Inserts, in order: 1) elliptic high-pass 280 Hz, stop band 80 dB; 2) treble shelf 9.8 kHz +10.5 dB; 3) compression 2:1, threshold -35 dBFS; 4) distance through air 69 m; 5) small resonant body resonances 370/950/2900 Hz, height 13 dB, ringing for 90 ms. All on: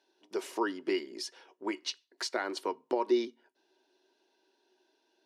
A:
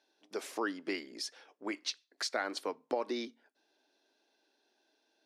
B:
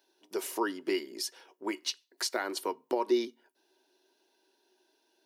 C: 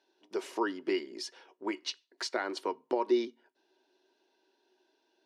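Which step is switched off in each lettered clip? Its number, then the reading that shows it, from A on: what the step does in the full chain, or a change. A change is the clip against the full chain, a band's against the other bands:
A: 5, 250 Hz band -5.0 dB; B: 4, 8 kHz band +5.5 dB; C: 2, 8 kHz band -2.0 dB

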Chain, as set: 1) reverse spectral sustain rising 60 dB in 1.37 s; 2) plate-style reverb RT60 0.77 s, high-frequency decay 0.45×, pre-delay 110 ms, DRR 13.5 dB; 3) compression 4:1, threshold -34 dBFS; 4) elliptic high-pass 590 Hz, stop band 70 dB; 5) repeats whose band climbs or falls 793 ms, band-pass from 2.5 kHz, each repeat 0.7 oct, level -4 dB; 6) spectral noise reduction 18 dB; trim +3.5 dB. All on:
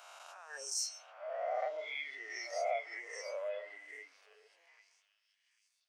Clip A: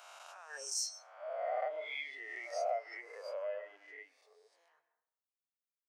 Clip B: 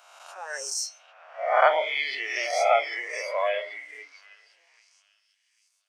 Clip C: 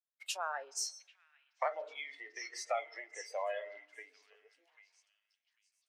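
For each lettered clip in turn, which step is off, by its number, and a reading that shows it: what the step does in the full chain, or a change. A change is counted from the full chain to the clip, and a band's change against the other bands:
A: 5, momentary loudness spread change +2 LU; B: 3, mean gain reduction 7.5 dB; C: 1, 1 kHz band +2.5 dB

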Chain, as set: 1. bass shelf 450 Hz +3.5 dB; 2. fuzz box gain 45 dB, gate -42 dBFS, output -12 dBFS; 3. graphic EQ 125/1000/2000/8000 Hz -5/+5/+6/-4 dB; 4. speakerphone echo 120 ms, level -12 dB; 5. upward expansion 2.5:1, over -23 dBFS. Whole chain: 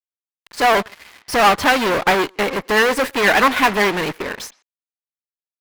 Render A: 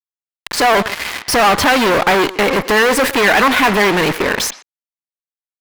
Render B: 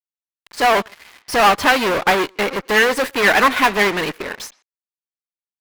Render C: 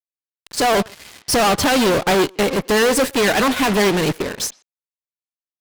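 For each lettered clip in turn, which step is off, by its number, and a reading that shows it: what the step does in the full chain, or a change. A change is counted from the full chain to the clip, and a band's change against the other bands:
5, 8 kHz band +3.5 dB; 1, 125 Hz band -2.0 dB; 3, 2 kHz band -7.0 dB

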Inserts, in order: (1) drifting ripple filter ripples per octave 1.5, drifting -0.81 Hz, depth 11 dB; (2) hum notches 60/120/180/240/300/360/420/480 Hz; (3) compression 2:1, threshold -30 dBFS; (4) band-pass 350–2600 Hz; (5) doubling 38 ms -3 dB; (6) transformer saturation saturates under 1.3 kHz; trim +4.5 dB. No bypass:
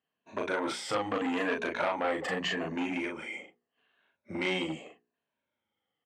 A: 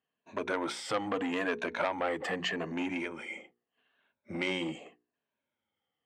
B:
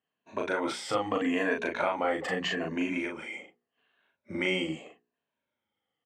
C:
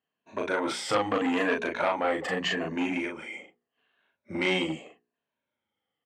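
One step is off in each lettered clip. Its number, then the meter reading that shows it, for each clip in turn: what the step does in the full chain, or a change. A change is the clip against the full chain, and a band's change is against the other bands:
5, loudness change -1.5 LU; 6, momentary loudness spread change +2 LU; 3, momentary loudness spread change +3 LU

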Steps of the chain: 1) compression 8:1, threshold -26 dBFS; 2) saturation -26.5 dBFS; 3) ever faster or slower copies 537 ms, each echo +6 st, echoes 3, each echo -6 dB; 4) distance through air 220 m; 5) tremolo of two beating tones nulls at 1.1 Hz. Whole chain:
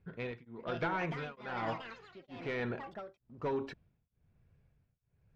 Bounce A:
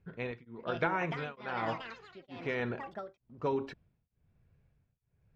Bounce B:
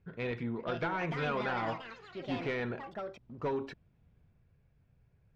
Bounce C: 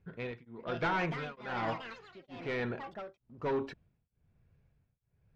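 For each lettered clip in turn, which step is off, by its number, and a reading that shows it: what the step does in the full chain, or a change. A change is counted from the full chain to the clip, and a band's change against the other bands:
2, distortion -13 dB; 5, momentary loudness spread change -3 LU; 1, mean gain reduction 2.0 dB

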